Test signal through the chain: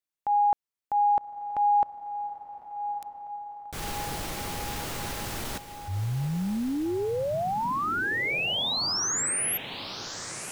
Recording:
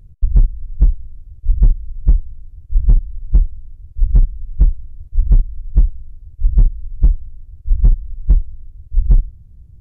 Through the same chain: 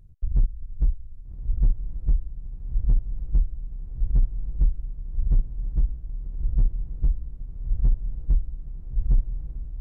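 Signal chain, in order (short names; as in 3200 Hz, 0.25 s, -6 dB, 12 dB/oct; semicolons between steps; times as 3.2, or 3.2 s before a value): diffused feedback echo 1.202 s, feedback 61%, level -11 dB; transient shaper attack -5 dB, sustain -1 dB; gain -7.5 dB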